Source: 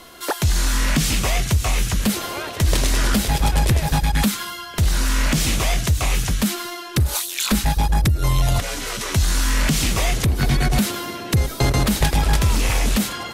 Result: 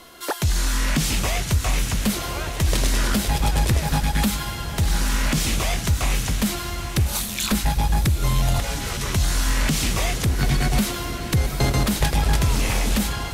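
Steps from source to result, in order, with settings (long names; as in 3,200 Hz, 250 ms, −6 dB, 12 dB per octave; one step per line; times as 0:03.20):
feedback delay with all-pass diffusion 895 ms, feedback 48%, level −10 dB
level −2.5 dB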